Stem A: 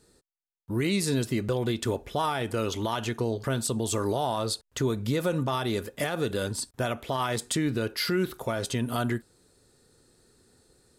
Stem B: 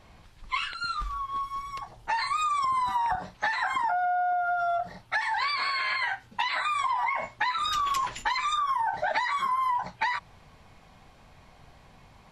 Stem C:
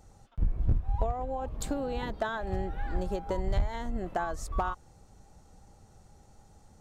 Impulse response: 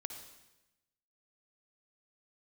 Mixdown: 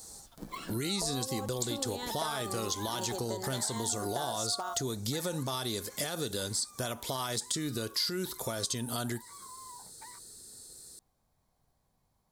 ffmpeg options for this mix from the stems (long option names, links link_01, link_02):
-filter_complex "[0:a]deesser=0.55,volume=-1dB[link_01];[1:a]equalizer=frequency=4800:width=0.41:gain=-13.5,acrusher=bits=9:mode=log:mix=0:aa=0.000001,volume=-8dB,afade=type=out:start_time=5.12:duration=0.32:silence=0.237137[link_02];[2:a]highpass=frequency=210:width=0.5412,highpass=frequency=210:width=1.3066,volume=1dB[link_03];[link_01][link_02][link_03]amix=inputs=3:normalize=0,acrossover=split=7900[link_04][link_05];[link_05]acompressor=threshold=-55dB:ratio=4:attack=1:release=60[link_06];[link_04][link_06]amix=inputs=2:normalize=0,aexciter=amount=4.7:drive=7.6:freq=3800,acompressor=threshold=-34dB:ratio=2.5"